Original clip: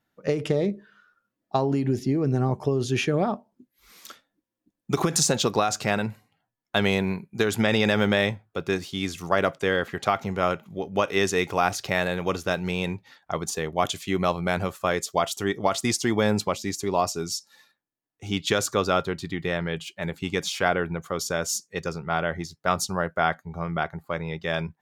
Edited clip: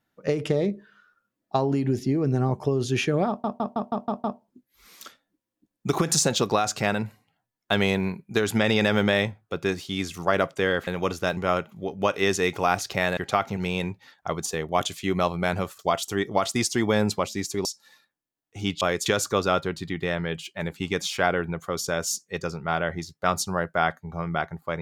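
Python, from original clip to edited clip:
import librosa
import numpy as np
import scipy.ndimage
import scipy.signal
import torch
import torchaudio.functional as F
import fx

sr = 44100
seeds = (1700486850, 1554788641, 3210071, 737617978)

y = fx.edit(x, sr, fx.stutter(start_s=3.28, slice_s=0.16, count=7),
    fx.swap(start_s=9.91, length_s=0.4, other_s=12.11, other_length_s=0.5),
    fx.move(start_s=14.83, length_s=0.25, to_s=18.48),
    fx.cut(start_s=16.94, length_s=0.38), tone=tone)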